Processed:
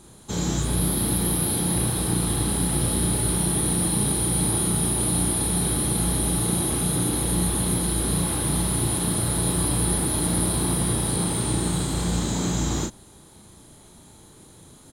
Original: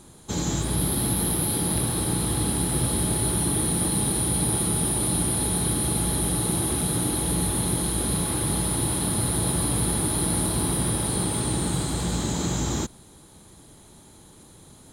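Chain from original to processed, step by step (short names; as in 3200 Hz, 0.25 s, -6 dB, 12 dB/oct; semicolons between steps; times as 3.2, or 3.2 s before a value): doubler 34 ms -3 dB; gain -1 dB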